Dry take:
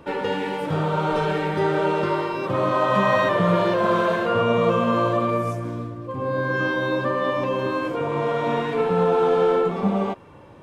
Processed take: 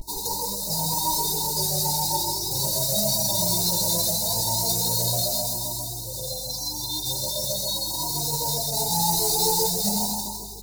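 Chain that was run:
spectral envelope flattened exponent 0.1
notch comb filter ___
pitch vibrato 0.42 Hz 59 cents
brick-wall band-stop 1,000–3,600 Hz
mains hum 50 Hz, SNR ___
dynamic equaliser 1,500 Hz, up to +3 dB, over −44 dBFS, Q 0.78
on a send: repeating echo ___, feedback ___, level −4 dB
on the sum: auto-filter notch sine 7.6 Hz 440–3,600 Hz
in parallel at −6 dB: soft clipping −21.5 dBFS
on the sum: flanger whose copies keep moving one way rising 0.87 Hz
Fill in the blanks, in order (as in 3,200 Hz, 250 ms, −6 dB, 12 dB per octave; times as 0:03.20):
250 Hz, 29 dB, 160 ms, 56%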